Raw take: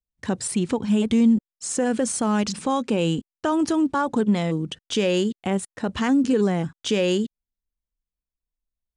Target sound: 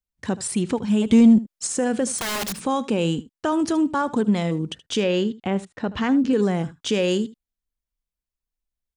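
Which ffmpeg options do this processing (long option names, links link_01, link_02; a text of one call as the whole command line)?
ffmpeg -i in.wav -filter_complex "[0:a]asettb=1/sr,asplit=3[link_01][link_02][link_03];[link_01]atrim=end=1.124[link_04];[link_02]atrim=start=1.12:end=1.67,asetpts=PTS-STARTPTS,afade=type=in:duration=0.004:curve=qsin,afade=type=out:start_time=0.546:duration=0.004:curve=qsin,acontrast=40[link_05];[link_03]atrim=start=1.666[link_06];[link_04][link_05]acrossfade=duration=0.004:curve1=hsin:curve2=qsin[link_07];[link_07][link_06]acrossfade=duration=0.004:curve1=qsin:curve2=hsin,asettb=1/sr,asplit=3[link_08][link_09][link_10];[link_08]atrim=end=2.184[link_11];[link_09]atrim=start=2.18:end=2.61,asetpts=PTS-STARTPTS,afade=type=in:duration=0.004:curve=qsin,afade=type=out:start_time=0.426:duration=0.004:curve=qsin,aeval=exprs='(mod(12.6*val(0)+1,2)-1)/12.6':channel_layout=same[link_12];[link_10]atrim=start=2.606[link_13];[link_11][link_12]acrossfade=duration=0.004:curve1=hsin:curve2=qsin[link_14];[link_14][link_13]acrossfade=duration=0.004:curve1=qsin:curve2=hsin,asettb=1/sr,asplit=3[link_15][link_16][link_17];[link_15]atrim=end=5.004[link_18];[link_16]atrim=start=5:end=6.33,asetpts=PTS-STARTPTS,afade=type=in:duration=0.004:curve=qsin,afade=type=out:start_time=1.326:duration=0.004:curve=qsin,lowpass=4300[link_19];[link_17]atrim=start=6.326[link_20];[link_18][link_19]acrossfade=duration=0.004:curve1=hsin:curve2=qsin[link_21];[link_21][link_20]acrossfade=duration=0.004:curve1=qsin:curve2=hsin,aecho=1:1:76:0.126" out.wav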